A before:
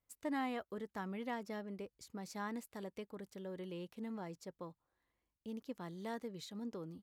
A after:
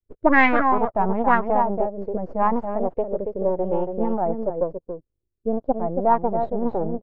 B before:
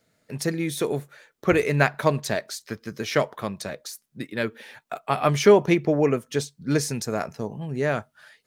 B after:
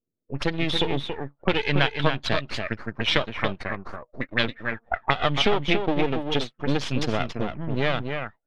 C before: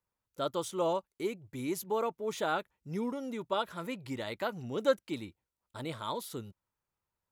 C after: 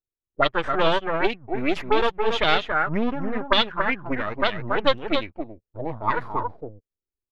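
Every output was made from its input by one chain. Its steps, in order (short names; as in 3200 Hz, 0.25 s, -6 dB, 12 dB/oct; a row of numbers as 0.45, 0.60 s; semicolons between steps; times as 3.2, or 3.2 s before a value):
per-bin expansion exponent 1.5; compressor 5:1, threshold -29 dBFS; half-wave rectifier; outdoor echo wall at 48 m, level -6 dB; envelope low-pass 370–3400 Hz up, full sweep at -34 dBFS; normalise peaks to -2 dBFS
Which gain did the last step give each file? +24.0, +11.0, +16.5 dB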